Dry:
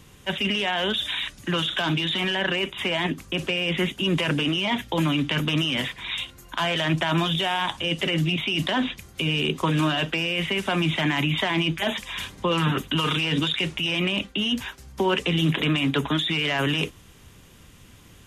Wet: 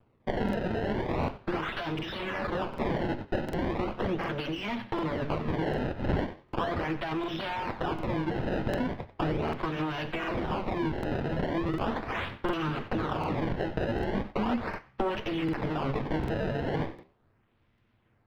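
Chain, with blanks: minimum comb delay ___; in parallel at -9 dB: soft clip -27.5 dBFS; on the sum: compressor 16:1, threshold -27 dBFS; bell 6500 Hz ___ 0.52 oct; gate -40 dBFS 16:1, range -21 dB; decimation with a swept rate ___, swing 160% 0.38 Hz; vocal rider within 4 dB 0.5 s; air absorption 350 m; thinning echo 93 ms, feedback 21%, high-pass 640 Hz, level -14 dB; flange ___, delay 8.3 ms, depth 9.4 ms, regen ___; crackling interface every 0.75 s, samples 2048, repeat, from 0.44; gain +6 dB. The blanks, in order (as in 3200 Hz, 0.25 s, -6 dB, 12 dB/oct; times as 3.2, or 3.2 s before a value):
8.8 ms, +3.5 dB, 22×, 0.92 Hz, -82%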